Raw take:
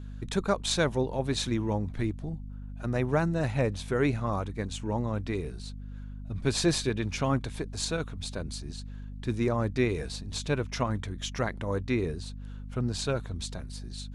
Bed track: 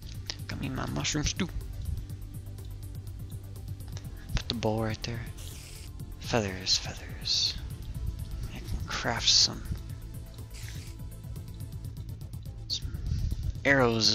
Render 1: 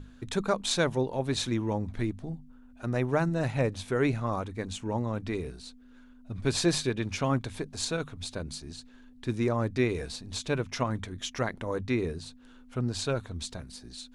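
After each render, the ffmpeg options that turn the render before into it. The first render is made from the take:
-af "bandreject=f=50:t=h:w=6,bandreject=f=100:t=h:w=6,bandreject=f=150:t=h:w=6,bandreject=f=200:t=h:w=6"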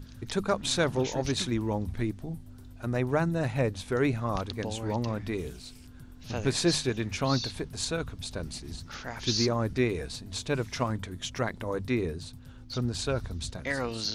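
-filter_complex "[1:a]volume=0.376[s0];[0:a][s0]amix=inputs=2:normalize=0"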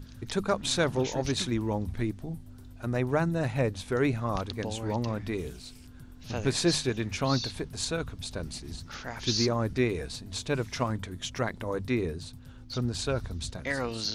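-af anull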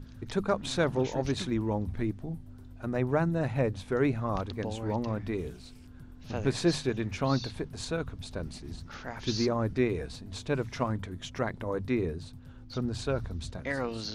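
-af "highshelf=f=2900:g=-9.5,bandreject=f=60:t=h:w=6,bandreject=f=120:t=h:w=6"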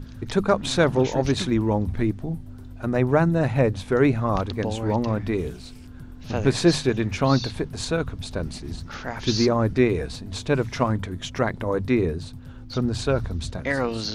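-af "volume=2.51"

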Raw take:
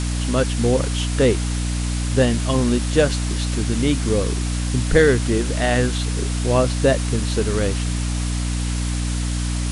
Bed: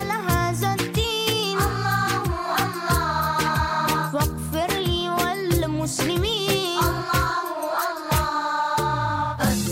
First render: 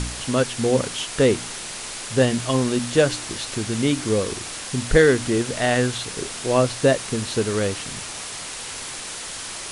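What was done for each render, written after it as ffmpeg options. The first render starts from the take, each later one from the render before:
-af "bandreject=f=60:t=h:w=4,bandreject=f=120:t=h:w=4,bandreject=f=180:t=h:w=4,bandreject=f=240:t=h:w=4,bandreject=f=300:t=h:w=4"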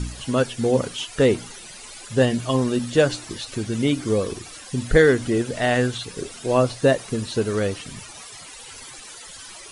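-af "afftdn=nr=14:nf=-33"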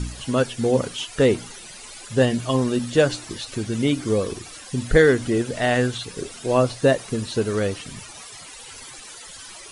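-af anull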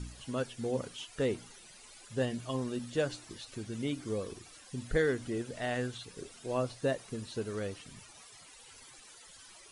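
-af "volume=0.2"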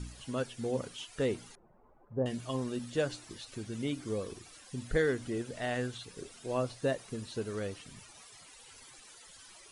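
-filter_complex "[0:a]asettb=1/sr,asplit=3[s0][s1][s2];[s0]atrim=end=1.554[s3];[s1]atrim=start=1.55:end=2.26,asetpts=PTS-STARTPTS,afade=t=in:d=0.004:c=qsin,afade=t=out:st=0.706:d=0.004:c=qsin,lowpass=f=1000:w=0.5412,lowpass=f=1000:w=1.3066[s4];[s2]atrim=start=2.256[s5];[s3][s4]acrossfade=d=0.004:c1=hsin:c2=qsin[s6];[s6][s5]acrossfade=d=0.004:c1=qsin:c2=hsin"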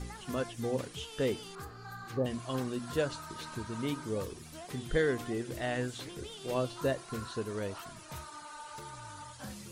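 -filter_complex "[1:a]volume=0.0668[s0];[0:a][s0]amix=inputs=2:normalize=0"

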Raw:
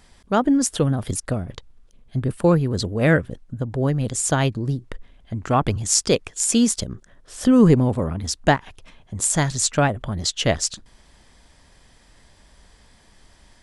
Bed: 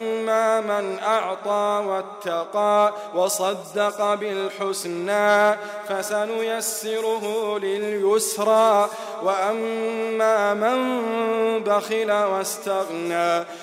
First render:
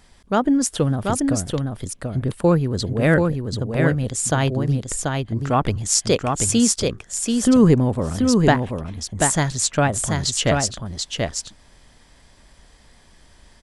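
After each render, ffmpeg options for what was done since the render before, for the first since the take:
-af "aecho=1:1:735:0.631"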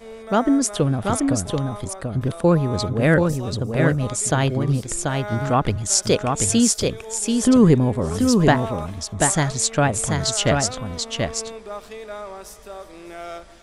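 -filter_complex "[1:a]volume=0.211[s0];[0:a][s0]amix=inputs=2:normalize=0"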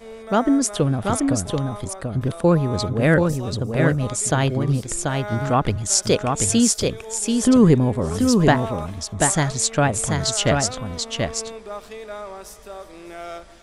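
-af anull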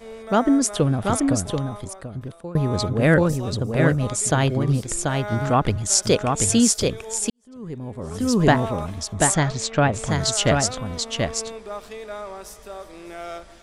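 -filter_complex "[0:a]asettb=1/sr,asplit=3[s0][s1][s2];[s0]atrim=end=9.344[s3];[s1]atrim=start=9.34:end=10.09,asetpts=PTS-STARTPTS,afade=t=in:d=0.004:c=qsin,afade=t=out:st=0.746:d=0.004:c=qsin,lowpass=4800[s4];[s2]atrim=start=10.086[s5];[s3][s4]acrossfade=d=0.004:c1=hsin:c2=qsin[s6];[s6][s5]acrossfade=d=0.004:c1=qsin:c2=hsin,asplit=3[s7][s8][s9];[s7]atrim=end=2.55,asetpts=PTS-STARTPTS,afade=t=out:st=1.35:d=1.2:silence=0.0707946[s10];[s8]atrim=start=2.55:end=7.3,asetpts=PTS-STARTPTS,afade=t=in:d=0.004:c=hsin:silence=0.0707946,afade=t=out:st=4.746:d=0.004:c=hsin[s11];[s9]atrim=start=7.3,asetpts=PTS-STARTPTS,afade=t=in:d=1.23:c=qua[s12];[s10][s11][s12]concat=n=3:v=0:a=1"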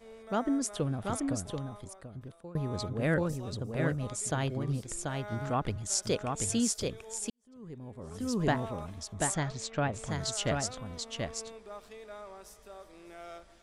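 -af "volume=0.251"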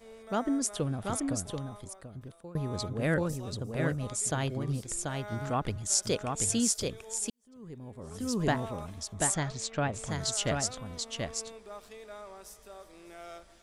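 -af "highshelf=f=5000:g=5.5"

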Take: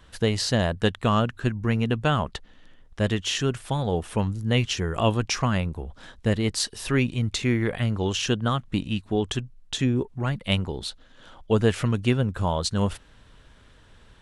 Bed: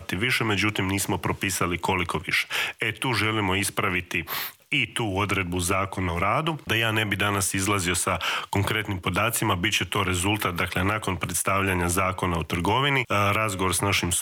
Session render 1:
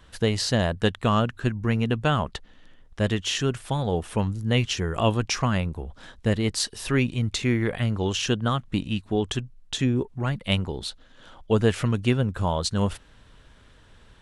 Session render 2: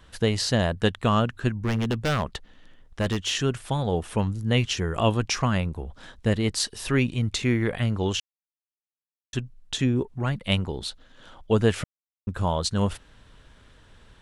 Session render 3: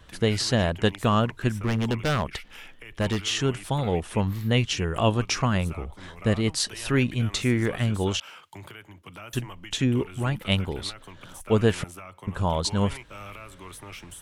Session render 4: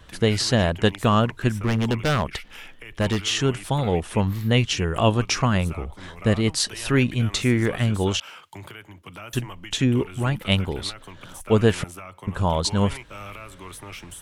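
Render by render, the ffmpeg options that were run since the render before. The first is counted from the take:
-af anull
-filter_complex "[0:a]asplit=3[s0][s1][s2];[s0]afade=t=out:st=1.51:d=0.02[s3];[s1]aeval=exprs='0.133*(abs(mod(val(0)/0.133+3,4)-2)-1)':c=same,afade=t=in:st=1.51:d=0.02,afade=t=out:st=3.34:d=0.02[s4];[s2]afade=t=in:st=3.34:d=0.02[s5];[s3][s4][s5]amix=inputs=3:normalize=0,asplit=5[s6][s7][s8][s9][s10];[s6]atrim=end=8.2,asetpts=PTS-STARTPTS,afade=t=out:st=8.196:d=0.004:c=hsin[s11];[s7]atrim=start=8.2:end=9.33,asetpts=PTS-STARTPTS,volume=0[s12];[s8]atrim=start=9.33:end=11.84,asetpts=PTS-STARTPTS,afade=t=in:d=0.004:c=hsin,afade=t=out:st=2.506:d=0.004:c=hsin[s13];[s9]atrim=start=11.84:end=12.27,asetpts=PTS-STARTPTS,volume=0[s14];[s10]atrim=start=12.27,asetpts=PTS-STARTPTS,afade=t=in:d=0.004:c=hsin[s15];[s11][s12][s13][s14][s15]concat=n=5:v=0:a=1"
-filter_complex "[1:a]volume=0.112[s0];[0:a][s0]amix=inputs=2:normalize=0"
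-af "volume=1.41"

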